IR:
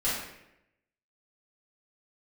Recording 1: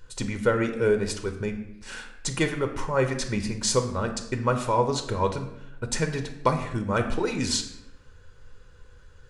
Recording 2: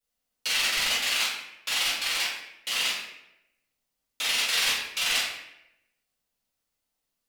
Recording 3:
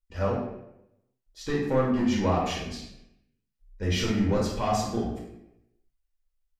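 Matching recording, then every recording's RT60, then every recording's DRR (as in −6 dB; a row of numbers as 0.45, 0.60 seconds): 2; 0.85, 0.85, 0.85 seconds; 5.5, −11.0, −4.0 decibels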